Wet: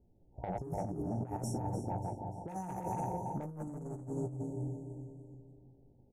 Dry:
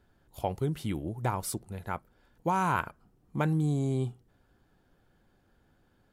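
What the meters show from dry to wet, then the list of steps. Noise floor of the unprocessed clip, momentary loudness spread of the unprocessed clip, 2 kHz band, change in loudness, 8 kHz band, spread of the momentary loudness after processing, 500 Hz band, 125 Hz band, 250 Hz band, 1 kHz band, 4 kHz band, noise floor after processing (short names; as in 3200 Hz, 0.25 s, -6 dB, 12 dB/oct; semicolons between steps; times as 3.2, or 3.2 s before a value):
-68 dBFS, 11 LU, -22.0 dB, -7.5 dB, -9.0 dB, 12 LU, -4.5 dB, -6.5 dB, -5.5 dB, -7.0 dB, under -10 dB, -65 dBFS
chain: regenerating reverse delay 0.167 s, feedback 65%, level -3 dB; low-pass opened by the level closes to 550 Hz, open at -23.5 dBFS; FFT band-reject 940–5300 Hz; feedback echo 0.294 s, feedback 43%, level -11 dB; soft clip -23.5 dBFS, distortion -14 dB; doubler 17 ms -7 dB; negative-ratio compressor -33 dBFS, ratio -0.5; gain -4 dB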